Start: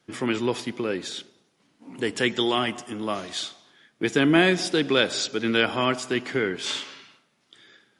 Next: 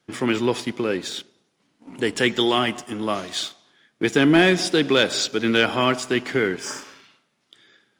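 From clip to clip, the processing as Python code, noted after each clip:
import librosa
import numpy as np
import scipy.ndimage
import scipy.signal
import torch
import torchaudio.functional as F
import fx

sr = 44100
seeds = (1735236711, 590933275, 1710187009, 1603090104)

y = fx.spec_repair(x, sr, seeds[0], start_s=6.61, length_s=0.4, low_hz=1900.0, high_hz=4700.0, source='both')
y = fx.leveller(y, sr, passes=1)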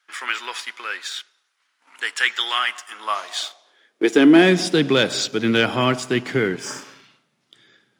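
y = fx.filter_sweep_highpass(x, sr, from_hz=1400.0, to_hz=120.0, start_s=2.88, end_s=5.0, q=1.9)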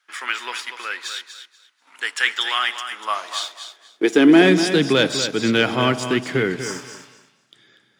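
y = fx.echo_feedback(x, sr, ms=242, feedback_pct=20, wet_db=-9.5)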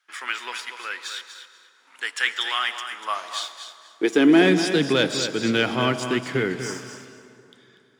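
y = fx.rev_plate(x, sr, seeds[1], rt60_s=3.1, hf_ratio=0.6, predelay_ms=100, drr_db=14.5)
y = F.gain(torch.from_numpy(y), -3.5).numpy()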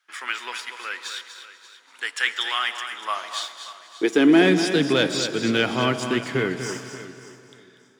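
y = fx.echo_feedback(x, sr, ms=583, feedback_pct=21, wet_db=-16.0)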